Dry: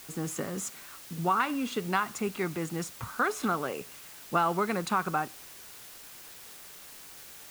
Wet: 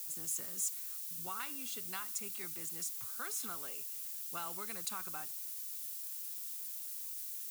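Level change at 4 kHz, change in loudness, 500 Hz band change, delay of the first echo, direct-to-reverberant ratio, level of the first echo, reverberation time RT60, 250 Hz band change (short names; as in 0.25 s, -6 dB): -6.0 dB, -7.5 dB, -20.5 dB, none, none, none, none, -21.5 dB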